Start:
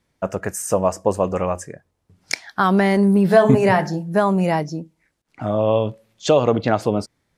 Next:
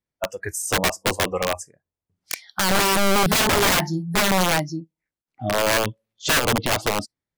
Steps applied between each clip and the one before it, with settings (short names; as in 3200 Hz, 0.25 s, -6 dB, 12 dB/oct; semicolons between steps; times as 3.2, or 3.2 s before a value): spectral noise reduction 20 dB; wrapped overs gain 13.5 dB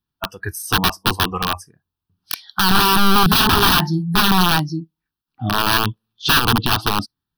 fixed phaser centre 2100 Hz, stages 6; gain +7.5 dB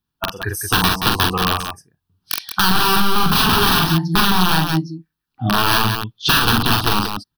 on a send: loudspeakers at several distances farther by 15 m -4 dB, 61 m -8 dB; on the sum: compressor, threshold -13 dBFS, peak gain reduction 7.5 dB; gain +2 dB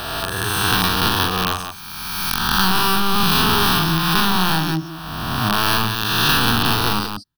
spectral swells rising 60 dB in 2.03 s; gain -5 dB